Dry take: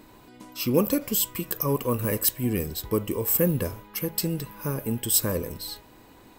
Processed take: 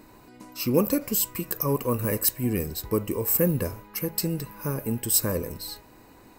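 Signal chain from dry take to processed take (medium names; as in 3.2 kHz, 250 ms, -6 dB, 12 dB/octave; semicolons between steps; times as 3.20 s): peaking EQ 3.3 kHz -11.5 dB 0.22 oct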